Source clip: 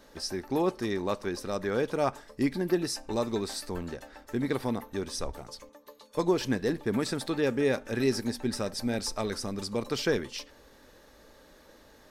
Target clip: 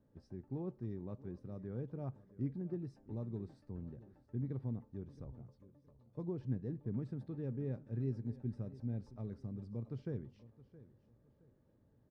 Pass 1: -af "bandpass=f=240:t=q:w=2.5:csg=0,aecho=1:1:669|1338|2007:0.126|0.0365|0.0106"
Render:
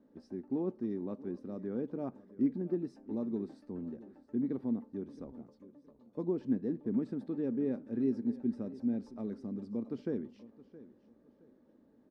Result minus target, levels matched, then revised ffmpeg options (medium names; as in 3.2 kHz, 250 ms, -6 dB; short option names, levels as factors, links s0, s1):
125 Hz band -12.5 dB
-af "bandpass=f=120:t=q:w=2.5:csg=0,aecho=1:1:669|1338|2007:0.126|0.0365|0.0106"